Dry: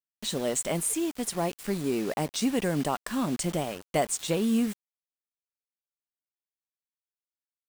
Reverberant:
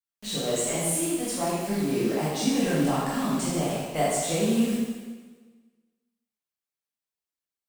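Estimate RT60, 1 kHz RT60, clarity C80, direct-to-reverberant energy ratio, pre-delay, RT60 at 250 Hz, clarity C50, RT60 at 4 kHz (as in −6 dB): 1.4 s, 1.4 s, 1.0 dB, −9.0 dB, 6 ms, 1.4 s, −2.0 dB, 1.3 s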